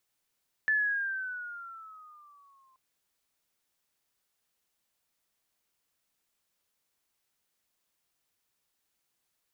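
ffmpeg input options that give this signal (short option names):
-f lavfi -i "aevalsrc='pow(10,(-22.5-39.5*t/2.08)/20)*sin(2*PI*1750*2.08/(-9*log(2)/12)*(exp(-9*log(2)/12*t/2.08)-1))':d=2.08:s=44100"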